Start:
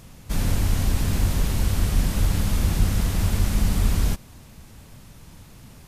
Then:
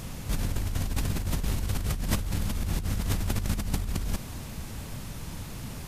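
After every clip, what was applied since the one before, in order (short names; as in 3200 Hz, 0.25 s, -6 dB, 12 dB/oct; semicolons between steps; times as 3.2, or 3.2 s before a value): negative-ratio compressor -28 dBFS, ratio -1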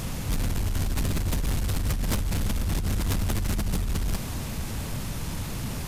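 soft clip -28 dBFS, distortion -10 dB; gain +7 dB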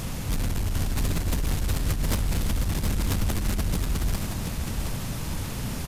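echo 0.719 s -6 dB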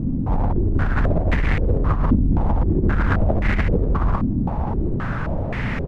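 stepped low-pass 3.8 Hz 270–2000 Hz; gain +6.5 dB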